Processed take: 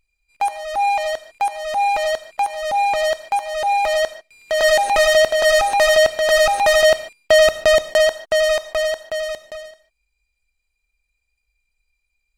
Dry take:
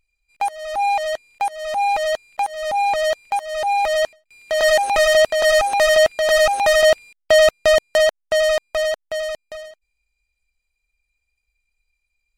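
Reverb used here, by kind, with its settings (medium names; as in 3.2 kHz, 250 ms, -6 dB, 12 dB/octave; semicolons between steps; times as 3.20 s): gated-style reverb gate 170 ms flat, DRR 12 dB; trim +1 dB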